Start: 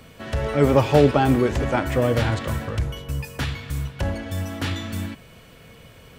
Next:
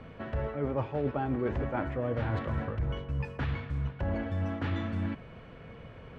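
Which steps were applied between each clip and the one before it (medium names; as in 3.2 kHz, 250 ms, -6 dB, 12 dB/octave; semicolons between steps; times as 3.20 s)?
low-pass 1.8 kHz 12 dB/octave; reverse; compression 8:1, threshold -28 dBFS, peak gain reduction 18 dB; reverse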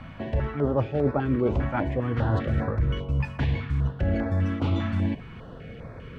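step-sequenced notch 5 Hz 440–3000 Hz; trim +7.5 dB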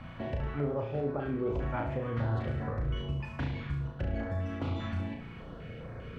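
compression, threshold -26 dBFS, peak gain reduction 8.5 dB; on a send: flutter echo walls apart 6 m, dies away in 0.49 s; on the sum: trim -4.5 dB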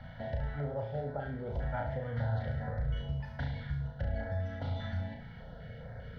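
static phaser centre 1.7 kHz, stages 8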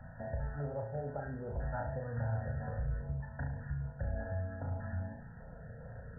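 brick-wall FIR low-pass 1.9 kHz; trim -2.5 dB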